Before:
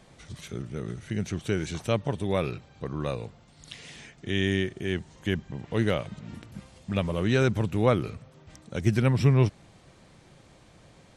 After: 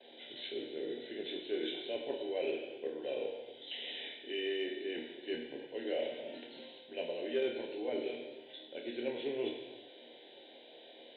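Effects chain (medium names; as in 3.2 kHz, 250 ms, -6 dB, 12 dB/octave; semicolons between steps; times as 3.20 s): knee-point frequency compression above 2.9 kHz 4:1; Chebyshev high-pass 220 Hz, order 4; band-stop 1.3 kHz, Q 6; reverse; compression 4:1, threshold -38 dBFS, peak gain reduction 16.5 dB; reverse; static phaser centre 480 Hz, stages 4; gate with hold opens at -55 dBFS; flange 0.51 Hz, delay 6.7 ms, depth 5.9 ms, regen -74%; on a send: flutter echo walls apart 4.3 m, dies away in 0.21 s; on the sum: gated-style reverb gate 420 ms falling, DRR 1.5 dB; Chebyshev shaper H 3 -30 dB, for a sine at -29 dBFS; trim +7 dB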